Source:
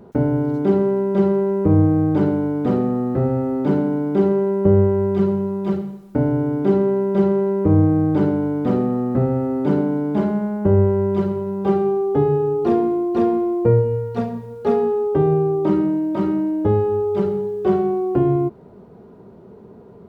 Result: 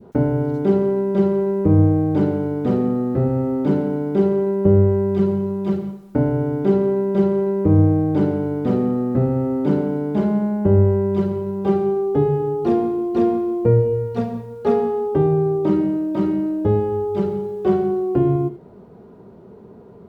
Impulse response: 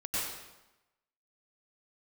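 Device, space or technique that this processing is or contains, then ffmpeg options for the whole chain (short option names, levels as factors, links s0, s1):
keyed gated reverb: -filter_complex "[0:a]asplit=3[s0][s1][s2];[1:a]atrim=start_sample=2205[s3];[s1][s3]afir=irnorm=-1:irlink=0[s4];[s2]apad=whole_len=885949[s5];[s4][s5]sidechaingate=range=0.0224:threshold=0.0355:ratio=16:detection=peak,volume=0.133[s6];[s0][s6]amix=inputs=2:normalize=0,adynamicequalizer=threshold=0.0224:dfrequency=1100:dqfactor=0.76:tfrequency=1100:tqfactor=0.76:attack=5:release=100:ratio=0.375:range=2:mode=cutabove:tftype=bell"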